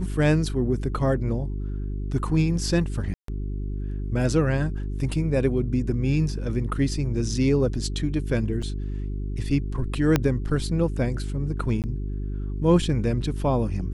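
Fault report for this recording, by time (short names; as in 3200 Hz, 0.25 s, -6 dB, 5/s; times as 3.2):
hum 50 Hz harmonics 8 -29 dBFS
3.14–3.28 gap 0.143 s
8.62 gap 4 ms
10.16 pop -6 dBFS
11.82–11.84 gap 18 ms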